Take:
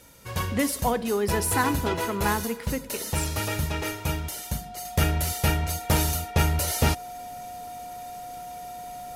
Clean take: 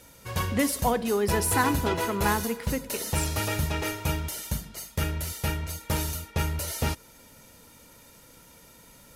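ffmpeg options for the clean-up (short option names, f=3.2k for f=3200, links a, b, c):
-af "bandreject=f=720:w=30,asetnsamples=n=441:p=0,asendcmd='4.85 volume volume -5.5dB',volume=0dB"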